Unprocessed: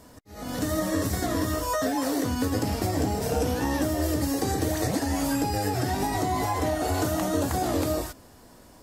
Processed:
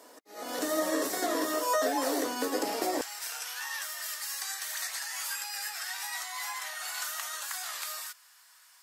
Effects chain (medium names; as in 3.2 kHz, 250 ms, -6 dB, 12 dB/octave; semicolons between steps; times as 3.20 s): high-pass 340 Hz 24 dB/octave, from 3.01 s 1.3 kHz